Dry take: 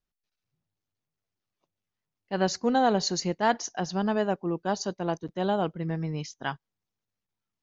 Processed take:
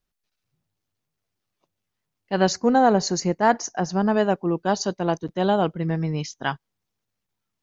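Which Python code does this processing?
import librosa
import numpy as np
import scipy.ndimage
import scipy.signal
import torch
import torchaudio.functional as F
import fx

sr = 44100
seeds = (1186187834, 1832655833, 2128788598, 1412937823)

y = fx.peak_eq(x, sr, hz=3400.0, db=-11.5, octaves=0.78, at=(2.53, 4.14))
y = y * 10.0 ** (6.0 / 20.0)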